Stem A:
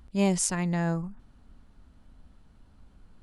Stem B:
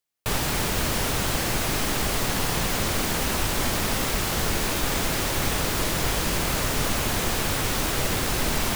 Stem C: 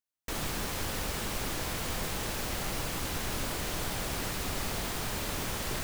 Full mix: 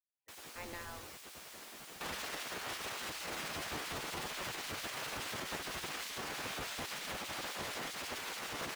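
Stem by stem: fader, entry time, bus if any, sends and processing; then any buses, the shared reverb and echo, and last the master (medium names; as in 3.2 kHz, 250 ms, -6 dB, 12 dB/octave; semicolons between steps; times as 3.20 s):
-8.0 dB, 0.00 s, no bus, no send, trance gate "...xxxxxxx" 81 bpm -60 dB
-2.0 dB, 1.75 s, bus A, no send, treble shelf 5.7 kHz -11.5 dB
-11.0 dB, 0.00 s, bus A, no send, peaking EQ 130 Hz +7.5 dB 0.36 oct; hum notches 60/120 Hz
bus A: 0.0 dB, chorus voices 2, 0.92 Hz, delay 11 ms, depth 3 ms; peak limiter -27 dBFS, peak gain reduction 10.5 dB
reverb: none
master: spectral gate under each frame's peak -15 dB weak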